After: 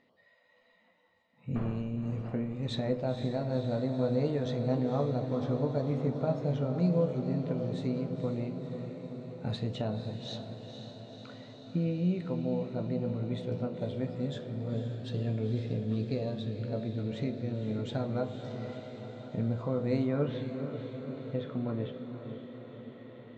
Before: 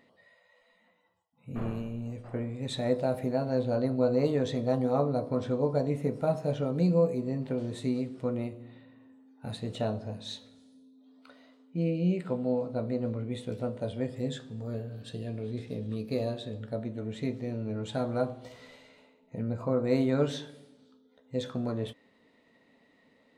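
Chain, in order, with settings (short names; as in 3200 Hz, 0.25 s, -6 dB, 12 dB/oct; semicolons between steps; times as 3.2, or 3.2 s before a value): recorder AGC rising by 5.2 dB/s; LPF 6300 Hz 24 dB/oct, from 20.07 s 3100 Hz; diffused feedback echo 0.504 s, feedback 70%, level -8 dB; dynamic EQ 140 Hz, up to +4 dB, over -41 dBFS, Q 0.94; gain -5 dB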